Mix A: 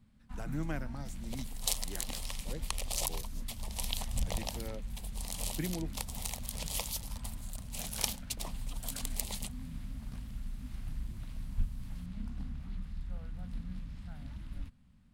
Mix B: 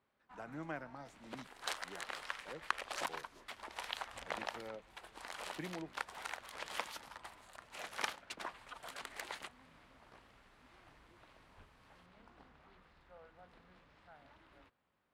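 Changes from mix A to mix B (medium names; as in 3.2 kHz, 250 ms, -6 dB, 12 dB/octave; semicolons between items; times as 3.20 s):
first sound: add resonant low shelf 290 Hz -8 dB, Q 3; second sound: remove static phaser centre 630 Hz, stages 4; master: add band-pass filter 970 Hz, Q 0.67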